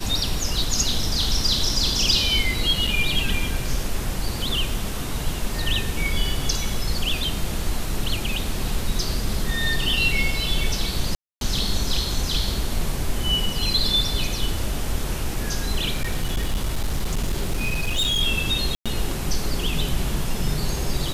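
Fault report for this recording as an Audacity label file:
2.870000	2.870000	drop-out 4.5 ms
11.150000	11.410000	drop-out 262 ms
15.950000	18.220000	clipping −18.5 dBFS
18.750000	18.860000	drop-out 106 ms

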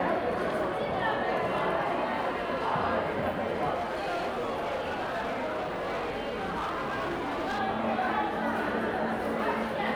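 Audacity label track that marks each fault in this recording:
3.740000	7.600000	clipping −28 dBFS

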